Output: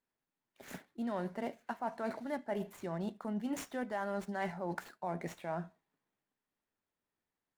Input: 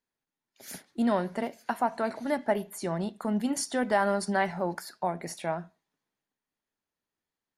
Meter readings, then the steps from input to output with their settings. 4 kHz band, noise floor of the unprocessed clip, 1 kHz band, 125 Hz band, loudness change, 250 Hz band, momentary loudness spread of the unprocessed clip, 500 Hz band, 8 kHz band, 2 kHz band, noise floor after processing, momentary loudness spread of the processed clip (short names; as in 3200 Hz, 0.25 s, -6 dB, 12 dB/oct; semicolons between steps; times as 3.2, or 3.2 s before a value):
-12.5 dB, under -85 dBFS, -10.0 dB, -6.5 dB, -9.5 dB, -8.5 dB, 8 LU, -9.5 dB, -15.0 dB, -10.0 dB, under -85 dBFS, 4 LU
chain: median filter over 9 samples; reverse; compressor 5:1, threshold -35 dBFS, peak gain reduction 13.5 dB; reverse